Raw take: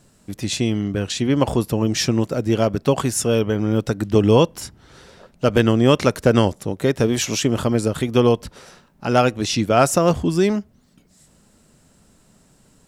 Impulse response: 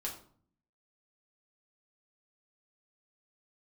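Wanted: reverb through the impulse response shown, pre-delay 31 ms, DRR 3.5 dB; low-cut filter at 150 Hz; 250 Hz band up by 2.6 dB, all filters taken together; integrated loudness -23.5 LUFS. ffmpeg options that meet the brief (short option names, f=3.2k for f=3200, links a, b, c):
-filter_complex "[0:a]highpass=150,equalizer=f=250:t=o:g=4,asplit=2[a][b];[1:a]atrim=start_sample=2205,adelay=31[c];[b][c]afir=irnorm=-1:irlink=0,volume=-4dB[d];[a][d]amix=inputs=2:normalize=0,volume=-7dB"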